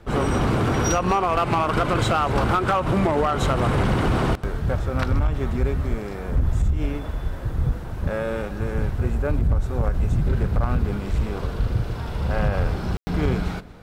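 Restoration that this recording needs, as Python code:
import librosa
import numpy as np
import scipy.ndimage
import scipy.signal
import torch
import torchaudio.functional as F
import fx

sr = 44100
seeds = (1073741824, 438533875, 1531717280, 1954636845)

y = fx.fix_declip(x, sr, threshold_db=-14.0)
y = fx.fix_ambience(y, sr, seeds[0], print_start_s=6.95, print_end_s=7.45, start_s=12.97, end_s=13.07)
y = fx.fix_echo_inverse(y, sr, delay_ms=235, level_db=-20.0)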